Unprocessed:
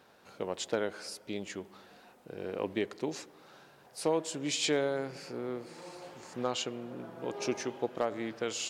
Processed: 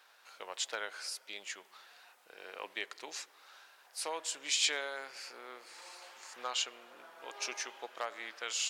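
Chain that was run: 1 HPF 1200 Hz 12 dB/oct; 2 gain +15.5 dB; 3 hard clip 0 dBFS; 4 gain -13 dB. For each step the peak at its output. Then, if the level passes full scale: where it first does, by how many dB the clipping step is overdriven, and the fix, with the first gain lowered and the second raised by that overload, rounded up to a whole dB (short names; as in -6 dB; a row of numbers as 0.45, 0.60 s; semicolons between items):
-18.5, -3.0, -3.0, -16.0 dBFS; no overload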